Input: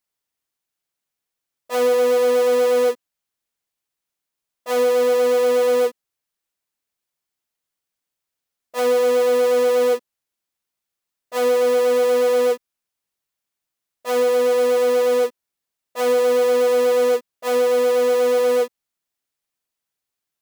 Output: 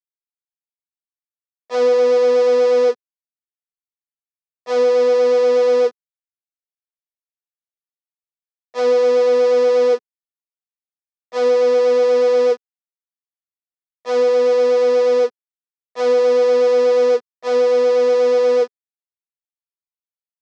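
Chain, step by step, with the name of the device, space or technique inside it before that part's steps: blown loudspeaker (crossover distortion -39.5 dBFS; speaker cabinet 160–5900 Hz, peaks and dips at 430 Hz +8 dB, 2900 Hz -4 dB, 5200 Hz +4 dB)

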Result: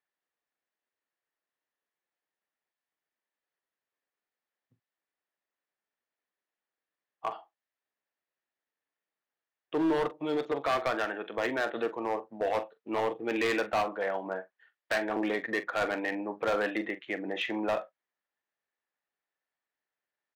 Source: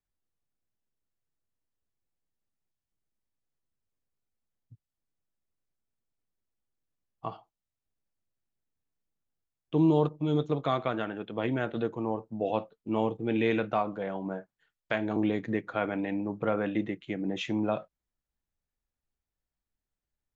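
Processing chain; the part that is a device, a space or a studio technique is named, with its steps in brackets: megaphone (BPF 490–3000 Hz; bell 1800 Hz +7 dB 0.27 oct; hard clip -28.5 dBFS, distortion -9 dB; doubler 43 ms -13.5 dB); gain +5 dB

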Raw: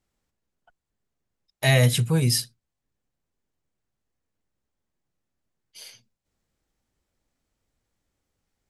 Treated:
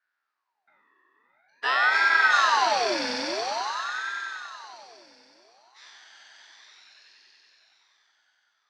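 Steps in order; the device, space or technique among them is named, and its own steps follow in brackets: spectral trails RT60 2.45 s; 1.74–2.32 Chebyshev band-stop 170–460 Hz; swelling echo 94 ms, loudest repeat 5, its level -7.5 dB; voice changer toy (ring modulator with a swept carrier 930 Hz, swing 60%, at 0.48 Hz; speaker cabinet 470–4800 Hz, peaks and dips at 510 Hz -9 dB, 1200 Hz -3 dB, 1700 Hz +7 dB, 3200 Hz -5 dB); gain -3.5 dB

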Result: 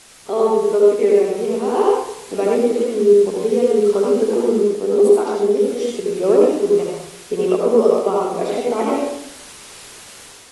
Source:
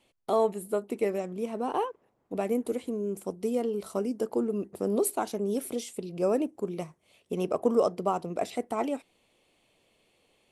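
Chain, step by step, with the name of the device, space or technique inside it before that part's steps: filmed off a television (BPF 190–6800 Hz; bell 410 Hz +11 dB 0.26 oct; reverb RT60 0.75 s, pre-delay 68 ms, DRR -3 dB; white noise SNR 23 dB; AGC gain up to 6 dB; AAC 32 kbps 24000 Hz)

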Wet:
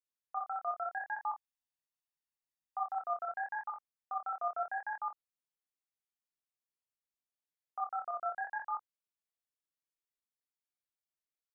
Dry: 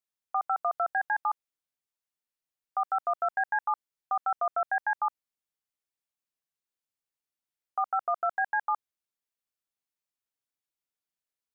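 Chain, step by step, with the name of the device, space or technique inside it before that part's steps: double-tracked vocal (doubler 23 ms -8 dB; chorus 0.79 Hz, depth 7.4 ms); 1.2–3 comb 1.1 ms, depth 70%; gain -6 dB

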